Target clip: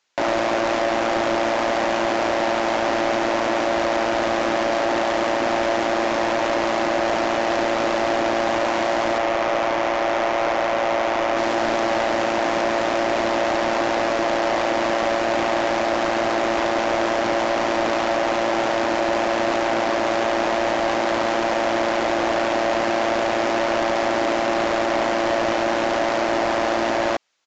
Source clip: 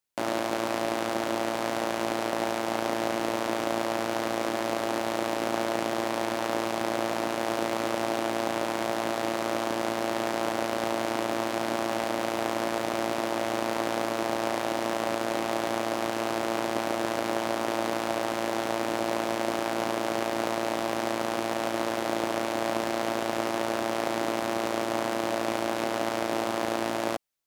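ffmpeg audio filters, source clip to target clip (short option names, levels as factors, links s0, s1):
-filter_complex "[0:a]asettb=1/sr,asplit=3[s0][s1][s2];[s0]atrim=end=9.184[s3];[s1]atrim=start=9.18:end=11.37,asetpts=PTS-STARTPTS,afade=t=in:d=0.004:c=qsin,afade=t=out:st=2.186:d=0.004:c=qsin,bass=f=250:g=-13,treble=f=4000:g=-11[s4];[s2]atrim=start=11.366[s5];[s3][s4]acrossfade=d=0.004:c1=hsin:c2=qsin[s6];[s6][s5]acrossfade=d=0.004:c1=qsin:c2=hsin,asplit=2[s7][s8];[s8]highpass=f=720:p=1,volume=20,asoftclip=type=tanh:threshold=0.282[s9];[s7][s9]amix=inputs=2:normalize=0,lowpass=f=4300:p=1,volume=0.501,aresample=16000,aresample=44100"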